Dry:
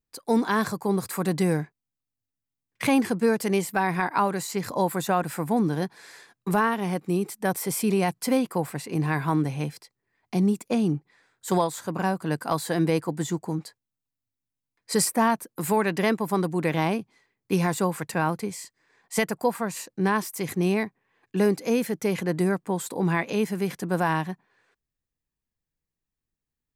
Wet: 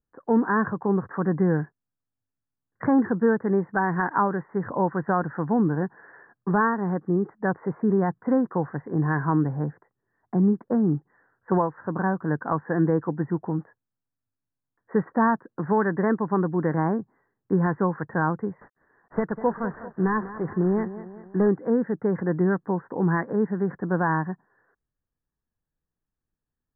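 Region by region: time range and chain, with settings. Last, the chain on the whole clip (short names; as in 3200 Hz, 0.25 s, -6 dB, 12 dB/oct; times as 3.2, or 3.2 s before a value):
18.61–21.49 CVSD 32 kbps + lo-fi delay 0.197 s, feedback 55%, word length 8-bit, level -14 dB
whole clip: steep low-pass 1800 Hz 96 dB/oct; dynamic EQ 660 Hz, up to -5 dB, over -38 dBFS, Q 2.5; gain +2 dB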